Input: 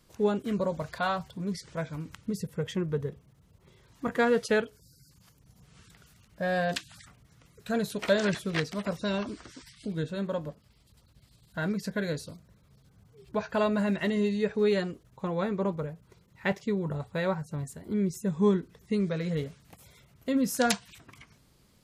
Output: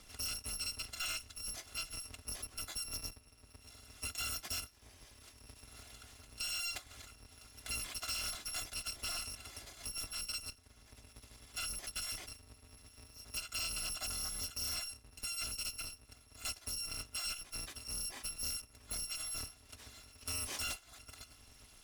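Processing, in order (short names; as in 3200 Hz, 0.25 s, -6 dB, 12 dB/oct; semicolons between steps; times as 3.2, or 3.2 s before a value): FFT order left unsorted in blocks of 256 samples; in parallel at -1 dB: compressor, threshold -36 dBFS, peak gain reduction 16.5 dB; on the sum: air absorption 51 m; hard clip -31.5 dBFS, distortion -8 dB; three-band squash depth 40%; gain -4 dB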